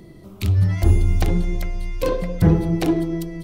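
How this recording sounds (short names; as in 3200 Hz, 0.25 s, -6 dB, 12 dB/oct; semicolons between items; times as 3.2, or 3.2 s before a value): noise floor -43 dBFS; spectral tilt -8.5 dB/oct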